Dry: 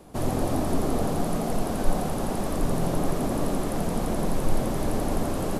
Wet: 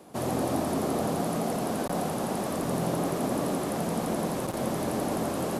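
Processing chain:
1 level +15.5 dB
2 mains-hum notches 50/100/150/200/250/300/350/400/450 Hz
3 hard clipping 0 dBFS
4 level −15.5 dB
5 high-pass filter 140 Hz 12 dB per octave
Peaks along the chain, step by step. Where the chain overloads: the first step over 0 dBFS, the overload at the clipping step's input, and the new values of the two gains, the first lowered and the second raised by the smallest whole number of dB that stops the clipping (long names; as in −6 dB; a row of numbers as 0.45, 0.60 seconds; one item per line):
+7.5, +7.0, 0.0, −15.5, −15.5 dBFS
step 1, 7.0 dB
step 1 +8.5 dB, step 4 −8.5 dB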